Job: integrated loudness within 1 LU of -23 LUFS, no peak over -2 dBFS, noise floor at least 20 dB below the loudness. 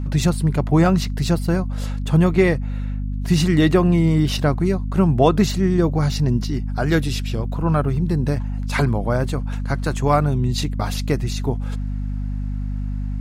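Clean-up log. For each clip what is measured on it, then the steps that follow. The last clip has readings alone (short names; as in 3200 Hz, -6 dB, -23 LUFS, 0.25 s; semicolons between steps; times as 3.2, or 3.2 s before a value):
hum 50 Hz; harmonics up to 250 Hz; hum level -22 dBFS; loudness -20.5 LUFS; peak -2.5 dBFS; loudness target -23.0 LUFS
-> de-hum 50 Hz, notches 5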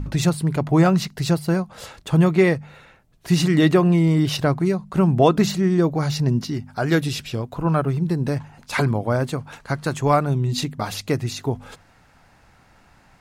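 hum none; loudness -21.0 LUFS; peak -3.5 dBFS; loudness target -23.0 LUFS
-> gain -2 dB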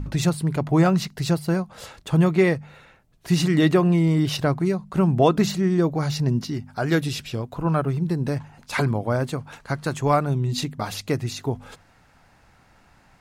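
loudness -23.0 LUFS; peak -5.5 dBFS; noise floor -57 dBFS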